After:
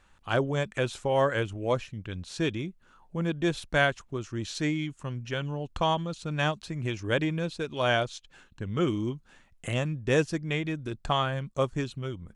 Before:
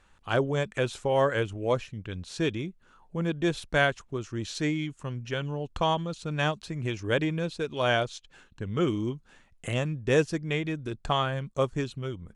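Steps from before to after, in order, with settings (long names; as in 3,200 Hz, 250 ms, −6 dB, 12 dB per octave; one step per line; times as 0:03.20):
parametric band 440 Hz −3 dB 0.31 octaves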